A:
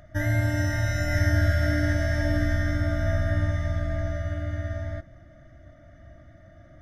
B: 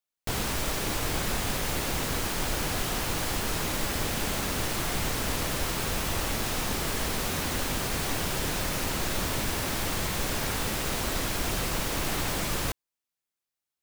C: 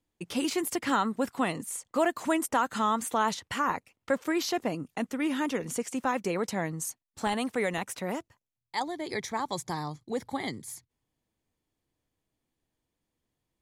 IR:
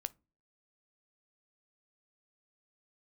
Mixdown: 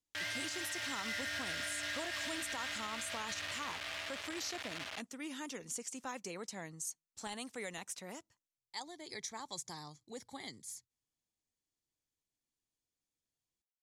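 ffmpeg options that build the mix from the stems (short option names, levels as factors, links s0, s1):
-filter_complex "[0:a]acrusher=bits=4:mix=0:aa=0.000001,bandpass=f=3000:t=q:w=1.2:csg=0,volume=0.668[s0];[2:a]equalizer=f=6400:w=0.58:g=14.5,volume=0.141,asplit=2[s1][s2];[s2]volume=0.178[s3];[3:a]atrim=start_sample=2205[s4];[s3][s4]afir=irnorm=-1:irlink=0[s5];[s0][s1][s5]amix=inputs=3:normalize=0,alimiter=level_in=2:limit=0.0631:level=0:latency=1:release=67,volume=0.501"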